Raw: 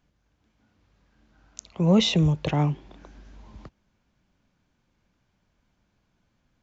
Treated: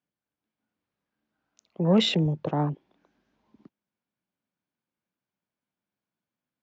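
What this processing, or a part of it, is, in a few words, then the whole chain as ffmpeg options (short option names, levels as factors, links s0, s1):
over-cleaned archive recording: -af "highpass=180,lowpass=5300,afwtdn=0.0178"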